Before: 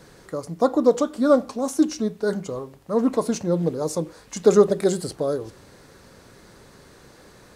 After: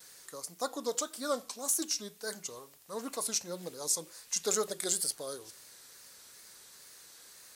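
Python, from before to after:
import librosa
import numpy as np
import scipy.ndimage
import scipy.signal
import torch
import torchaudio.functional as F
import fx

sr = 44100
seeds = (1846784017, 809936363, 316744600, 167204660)

y = fx.wow_flutter(x, sr, seeds[0], rate_hz=2.1, depth_cents=82.0)
y = F.preemphasis(torch.from_numpy(y), 0.97).numpy()
y = y * librosa.db_to_amplitude(5.0)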